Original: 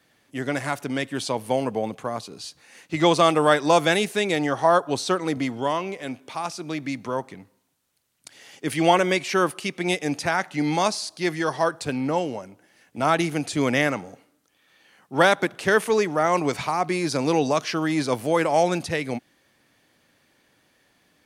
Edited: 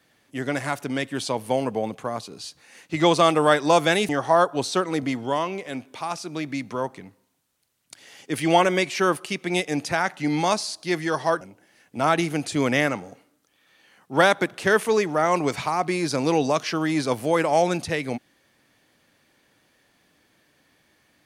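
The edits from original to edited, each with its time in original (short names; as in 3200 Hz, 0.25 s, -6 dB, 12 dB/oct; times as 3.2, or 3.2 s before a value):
4.09–4.43 cut
11.75–12.42 cut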